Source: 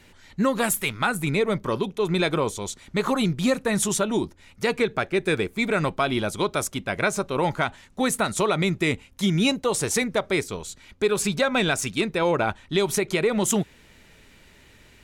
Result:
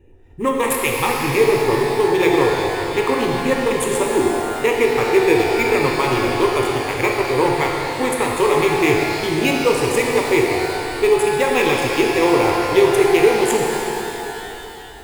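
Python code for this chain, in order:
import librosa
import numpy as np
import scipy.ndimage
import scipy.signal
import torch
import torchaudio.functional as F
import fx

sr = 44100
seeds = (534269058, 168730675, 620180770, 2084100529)

p1 = fx.wiener(x, sr, points=41)
p2 = fx.fixed_phaser(p1, sr, hz=980.0, stages=8)
p3 = fx.sample_hold(p2, sr, seeds[0], rate_hz=9100.0, jitter_pct=0)
p4 = p2 + F.gain(torch.from_numpy(p3), -7.0).numpy()
p5 = fx.rev_shimmer(p4, sr, seeds[1], rt60_s=3.3, semitones=12, shimmer_db=-8, drr_db=-1.0)
y = F.gain(torch.from_numpy(p5), 5.0).numpy()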